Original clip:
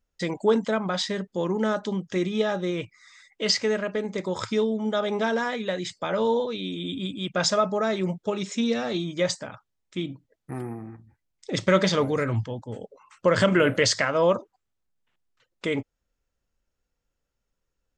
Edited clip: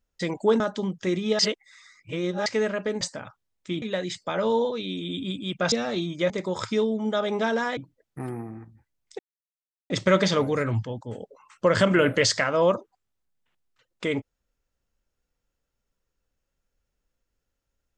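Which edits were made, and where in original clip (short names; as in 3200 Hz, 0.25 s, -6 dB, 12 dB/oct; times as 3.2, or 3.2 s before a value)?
0.6–1.69 cut
2.48–3.55 reverse
4.1–5.57 swap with 9.28–10.09
7.47–8.7 cut
11.51 insert silence 0.71 s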